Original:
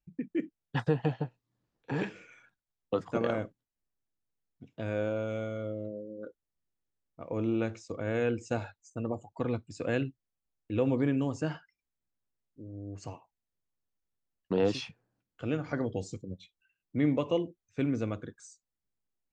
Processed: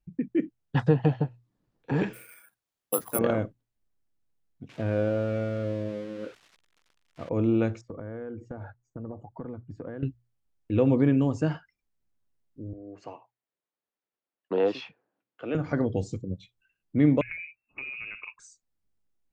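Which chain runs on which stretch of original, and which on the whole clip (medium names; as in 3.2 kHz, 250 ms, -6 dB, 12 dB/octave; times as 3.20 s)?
2.13–3.19 s: high-pass 620 Hz 6 dB/octave + careless resampling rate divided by 4×, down none, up zero stuff
4.69–7.29 s: zero-crossing glitches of -29 dBFS + low-pass 2.6 kHz
7.81–10.03 s: compression 4:1, threshold -41 dBFS + Savitzky-Golay filter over 41 samples
12.73–15.55 s: high-pass 150 Hz + three-band isolator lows -15 dB, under 330 Hz, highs -17 dB, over 4.1 kHz
17.21–18.39 s: compression 12:1, threshold -35 dBFS + frequency inversion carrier 2.7 kHz
whole clip: tilt EQ -1.5 dB/octave; hum notches 60/120 Hz; trim +3.5 dB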